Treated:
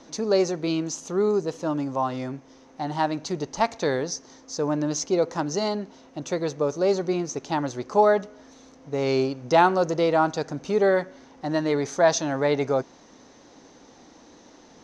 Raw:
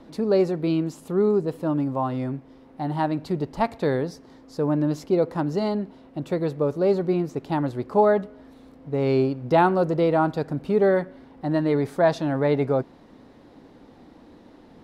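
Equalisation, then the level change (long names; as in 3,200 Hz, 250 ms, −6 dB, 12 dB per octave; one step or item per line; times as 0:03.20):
low-pass with resonance 6,200 Hz, resonance Q 12
low-shelf EQ 330 Hz −10 dB
+2.5 dB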